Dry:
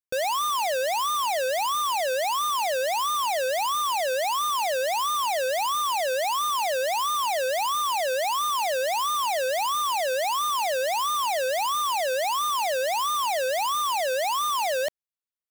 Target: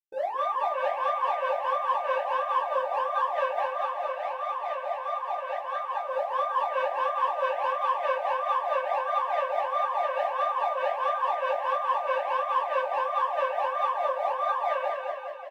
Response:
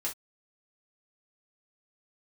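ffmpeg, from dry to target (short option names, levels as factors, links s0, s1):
-filter_complex "[0:a]bandreject=f=122.9:t=h:w=4,bandreject=f=245.8:t=h:w=4,bandreject=f=368.7:t=h:w=4,bandreject=f=491.6:t=h:w=4,bandreject=f=614.5:t=h:w=4,bandreject=f=737.4:t=h:w=4,bandreject=f=860.3:t=h:w=4,bandreject=f=983.2:t=h:w=4,bandreject=f=1106.1:t=h:w=4,bandreject=f=1229:t=h:w=4,bandreject=f=1351.9:t=h:w=4,bandreject=f=1474.8:t=h:w=4,bandreject=f=1597.7:t=h:w=4,bandreject=f=1720.6:t=h:w=4,bandreject=f=1843.5:t=h:w=4,bandreject=f=1966.4:t=h:w=4,bandreject=f=2089.3:t=h:w=4,bandreject=f=2212.2:t=h:w=4,bandreject=f=2335.1:t=h:w=4,bandreject=f=2458:t=h:w=4,acrossover=split=3200[s0][s1];[s1]acompressor=threshold=0.00398:ratio=4:attack=1:release=60[s2];[s0][s2]amix=inputs=2:normalize=0,afwtdn=0.0316,tremolo=f=4.7:d=0.59,asoftclip=type=tanh:threshold=0.0841,asplit=3[s3][s4][s5];[s3]afade=t=out:st=3.63:d=0.02[s6];[s4]flanger=delay=0.7:depth=9.1:regen=69:speed=1.2:shape=triangular,afade=t=in:st=3.63:d=0.02,afade=t=out:st=6.05:d=0.02[s7];[s5]afade=t=in:st=6.05:d=0.02[s8];[s6][s7][s8]amix=inputs=3:normalize=0,aecho=1:1:220|418|596.2|756.6|900.9:0.631|0.398|0.251|0.158|0.1[s9];[1:a]atrim=start_sample=2205,asetrate=57330,aresample=44100[s10];[s9][s10]afir=irnorm=-1:irlink=0"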